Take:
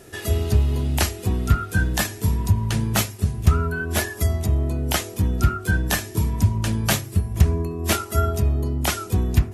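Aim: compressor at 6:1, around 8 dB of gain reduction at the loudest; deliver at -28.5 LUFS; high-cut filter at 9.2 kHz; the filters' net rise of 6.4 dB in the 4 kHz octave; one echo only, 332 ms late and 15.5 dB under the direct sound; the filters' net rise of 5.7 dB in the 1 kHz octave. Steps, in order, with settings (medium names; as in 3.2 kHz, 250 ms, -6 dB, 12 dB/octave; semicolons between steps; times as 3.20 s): low-pass 9.2 kHz; peaking EQ 1 kHz +7.5 dB; peaking EQ 4 kHz +8 dB; compression 6:1, threshold -19 dBFS; delay 332 ms -15.5 dB; trim -3.5 dB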